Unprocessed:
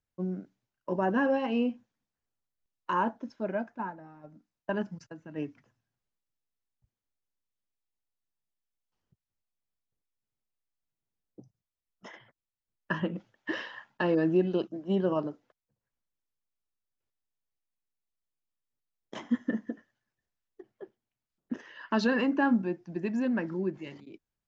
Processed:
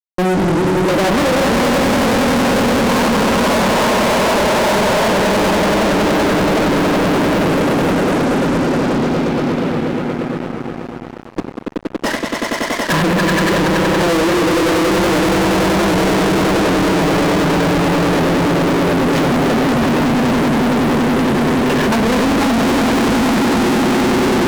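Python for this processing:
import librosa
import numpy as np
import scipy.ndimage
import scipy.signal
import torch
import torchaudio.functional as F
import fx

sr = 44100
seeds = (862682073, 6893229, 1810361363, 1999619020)

p1 = fx.peak_eq(x, sr, hz=470.0, db=4.0, octaves=1.7)
p2 = fx.leveller(p1, sr, passes=3)
p3 = p2 + fx.echo_swell(p2, sr, ms=94, loudest=8, wet_db=-4, dry=0)
p4 = fx.env_lowpass_down(p3, sr, base_hz=1100.0, full_db=-16.0)
p5 = scipy.signal.sosfilt(scipy.signal.butter(2, 120.0, 'highpass', fs=sr, output='sos'), p4)
p6 = fx.rev_schroeder(p5, sr, rt60_s=1.4, comb_ms=31, drr_db=10.0)
p7 = fx.echo_pitch(p6, sr, ms=196, semitones=-2, count=2, db_per_echo=-6.0)
p8 = fx.fuzz(p7, sr, gain_db=37.0, gate_db=-46.0)
y = fx.record_warp(p8, sr, rpm=78.0, depth_cents=100.0)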